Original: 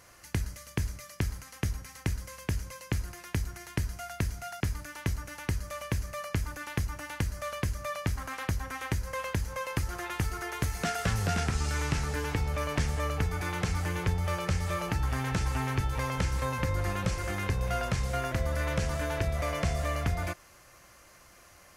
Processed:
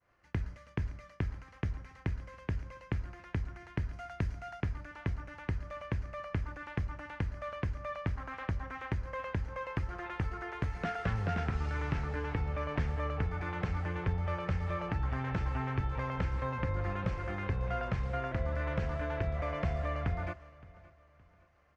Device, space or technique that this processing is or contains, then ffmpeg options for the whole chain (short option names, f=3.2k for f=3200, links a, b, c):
hearing-loss simulation: -filter_complex "[0:a]asettb=1/sr,asplit=3[a][b][c];[a]atrim=end=3.934[d];[b]atrim=start=3.93:end=4.61,asetpts=PTS-STARTPTS,afade=t=in:d=0.004:c=qsin,afade=t=out:st=0.676:d=0.004:c=qsin,bass=f=250:g=1,treble=f=4k:g=5[e];[c]atrim=start=4.606[f];[d][e]acrossfade=d=0.004:c1=hsin:c2=qsin[g];[g][f]acrossfade=d=0.004:c1=qsin:c2=hsin,lowpass=2.2k,agate=range=-33dB:threshold=-50dB:ratio=3:detection=peak,aecho=1:1:568|1136|1704:0.0891|0.0339|0.0129,volume=-3.5dB"